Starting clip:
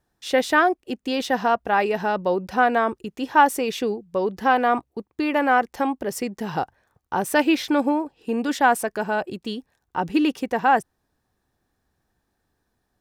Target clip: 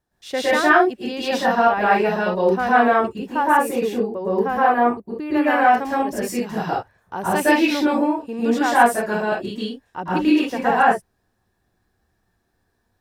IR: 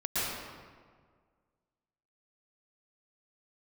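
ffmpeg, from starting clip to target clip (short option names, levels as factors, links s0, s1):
-filter_complex "[0:a]asettb=1/sr,asplit=3[s0][s1][s2];[s0]atrim=end=3.074[s3];[s1]atrim=start=3.07:end=5.33,asetpts=PTS-STARTPTS,afade=t=in:d=0.004:c=qsin,afade=t=out:st=2.256:d=0.004:c=qsin,equalizer=f=4100:w=0.62:g=-9.5[s4];[s2]atrim=start=5.326[s5];[s3][s4]acrossfade=d=0.004:c1=hsin:c2=qsin[s6];[s6][s5]acrossfade=d=0.004:c1=qsin:c2=hsin[s7];[1:a]atrim=start_sample=2205,afade=t=out:st=0.24:d=0.01,atrim=end_sample=11025[s8];[s7][s8]afir=irnorm=-1:irlink=0,volume=0.708"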